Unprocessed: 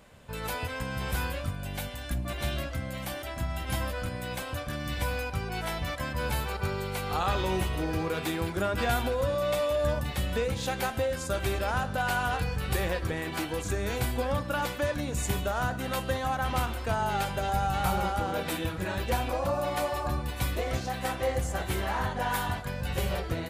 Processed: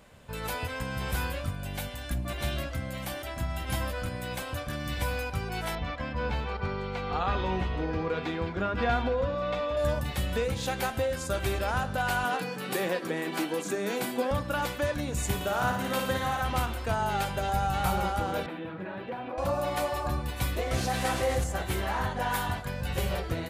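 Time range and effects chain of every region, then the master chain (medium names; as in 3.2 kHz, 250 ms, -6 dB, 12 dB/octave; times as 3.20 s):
5.75–9.77 s: distance through air 190 m + comb 4.2 ms, depth 33%
12.24–14.31 s: steep high-pass 170 Hz + peaking EQ 300 Hz +3.5 dB 1.9 oct
15.35–16.42 s: high-pass 94 Hz + flutter echo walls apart 9.7 m, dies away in 0.8 s
18.46–19.38 s: high-pass 150 Hz 24 dB/octave + compression 2.5:1, threshold -32 dBFS + distance through air 470 m
20.71–21.44 s: one-bit delta coder 64 kbps, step -35 dBFS + level flattener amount 50%
whole clip: none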